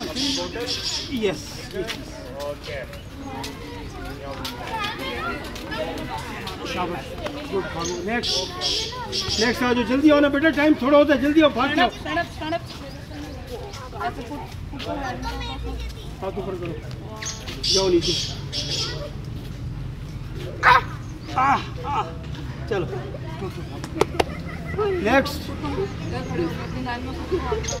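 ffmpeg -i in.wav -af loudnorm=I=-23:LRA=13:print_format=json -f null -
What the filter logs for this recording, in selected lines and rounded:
"input_i" : "-24.1",
"input_tp" : "-1.8",
"input_lra" : "11.3",
"input_thresh" : "-34.4",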